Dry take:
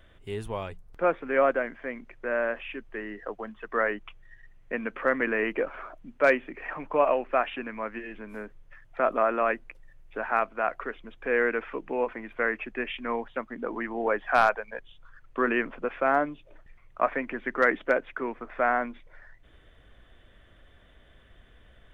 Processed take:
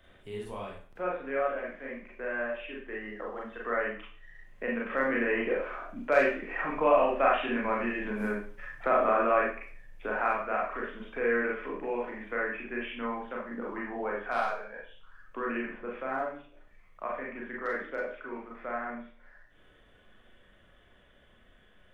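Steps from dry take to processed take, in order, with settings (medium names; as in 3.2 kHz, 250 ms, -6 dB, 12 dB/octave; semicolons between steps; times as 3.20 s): Doppler pass-by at 7.86 s, 7 m/s, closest 9.7 m; Schroeder reverb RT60 0.41 s, combs from 30 ms, DRR -4.5 dB; three bands compressed up and down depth 40%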